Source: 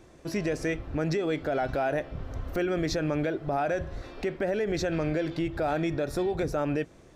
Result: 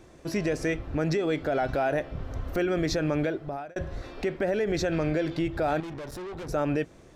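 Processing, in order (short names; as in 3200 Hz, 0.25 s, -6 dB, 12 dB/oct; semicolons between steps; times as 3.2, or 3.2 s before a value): 3.24–3.76 fade out; 5.8–6.49 tube stage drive 37 dB, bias 0.7; gain +1.5 dB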